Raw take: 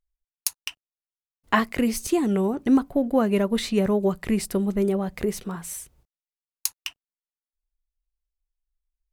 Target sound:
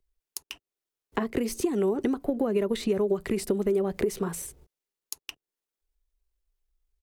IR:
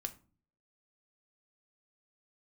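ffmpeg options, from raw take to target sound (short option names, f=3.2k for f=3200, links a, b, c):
-filter_complex "[0:a]atempo=1.3,acompressor=threshold=-25dB:ratio=6,equalizer=f=400:w=2.1:g=10.5,acrossover=split=150|700[a][b][c];[a]acompressor=threshold=-47dB:ratio=4[d];[b]acompressor=threshold=-31dB:ratio=4[e];[c]acompressor=threshold=-41dB:ratio=4[f];[d][e][f]amix=inputs=3:normalize=0,volume=5dB"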